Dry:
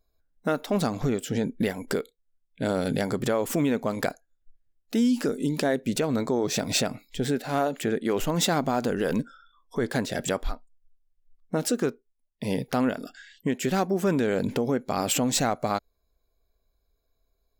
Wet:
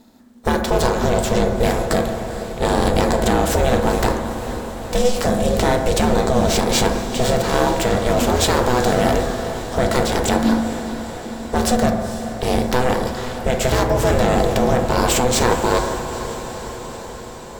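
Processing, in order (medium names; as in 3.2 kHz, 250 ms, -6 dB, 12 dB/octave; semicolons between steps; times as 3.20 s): spectral levelling over time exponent 0.6; waveshaping leveller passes 1; ring modulator 250 Hz; echo that smears into a reverb 464 ms, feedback 70%, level -11.5 dB; on a send at -3 dB: reverberation RT60 1.3 s, pre-delay 5 ms; on the sum: trim +2 dB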